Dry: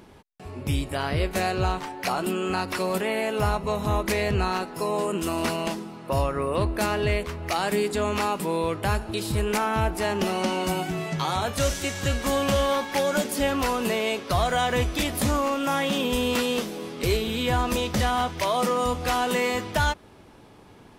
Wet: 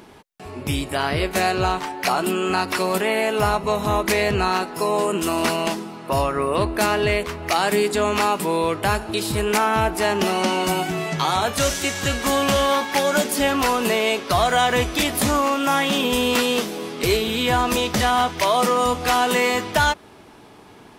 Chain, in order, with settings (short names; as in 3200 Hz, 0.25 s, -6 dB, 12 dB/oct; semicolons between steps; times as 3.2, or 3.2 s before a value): low shelf 150 Hz -10 dB; notch 530 Hz, Q 12; gain +6.5 dB